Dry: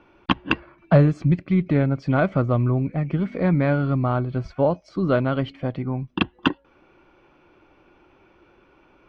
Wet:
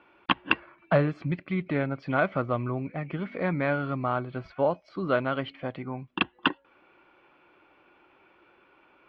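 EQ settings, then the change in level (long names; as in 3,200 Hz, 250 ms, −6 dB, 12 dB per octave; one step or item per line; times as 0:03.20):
high-frequency loss of the air 400 metres
spectral tilt +4 dB per octave
0.0 dB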